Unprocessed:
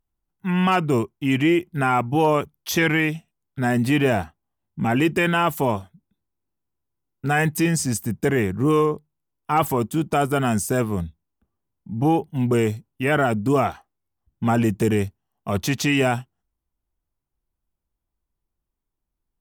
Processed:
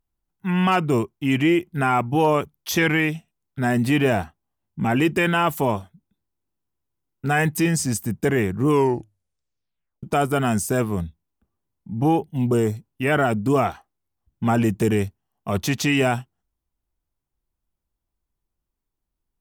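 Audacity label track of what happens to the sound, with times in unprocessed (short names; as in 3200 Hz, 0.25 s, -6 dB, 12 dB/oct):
8.670000	8.670000	tape stop 1.36 s
12.220000	12.740000	bell 980 Hz -> 3100 Hz -14 dB 0.56 oct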